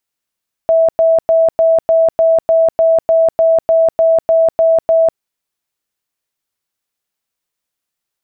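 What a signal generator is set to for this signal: tone bursts 654 Hz, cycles 129, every 0.30 s, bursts 15, -7 dBFS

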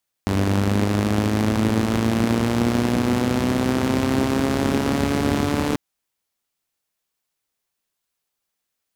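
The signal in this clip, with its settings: four-cylinder engine model, changing speed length 5.49 s, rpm 2900, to 4400, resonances 96/220 Hz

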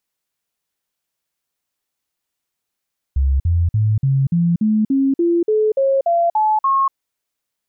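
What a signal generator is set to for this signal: stepped sine 67.8 Hz up, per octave 3, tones 13, 0.24 s, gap 0.05 s -12.5 dBFS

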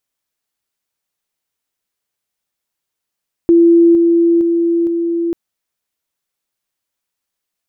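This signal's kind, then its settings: level ladder 338 Hz -5 dBFS, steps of -3 dB, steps 4, 0.46 s 0.00 s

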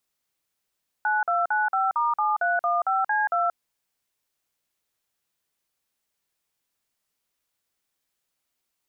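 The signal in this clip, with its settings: DTMF "9295*7315C2", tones 180 ms, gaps 47 ms, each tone -23 dBFS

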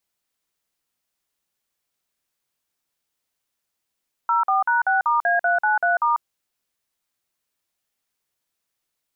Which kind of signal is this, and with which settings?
DTMF "04#6*A393*", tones 144 ms, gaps 48 ms, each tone -19 dBFS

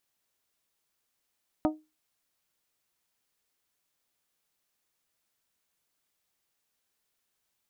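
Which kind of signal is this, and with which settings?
glass hit bell, lowest mode 309 Hz, decay 0.25 s, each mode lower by 3.5 dB, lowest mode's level -20 dB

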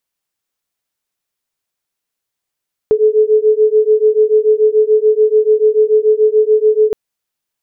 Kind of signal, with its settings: beating tones 427 Hz, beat 6.9 Hz, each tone -11 dBFS 4.02 s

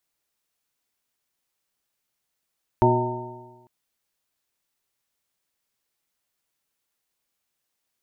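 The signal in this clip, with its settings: stretched partials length 0.85 s, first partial 120 Hz, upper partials -4/2/-17/-4/-10/2 dB, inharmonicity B 0.0035, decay 1.24 s, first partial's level -19 dB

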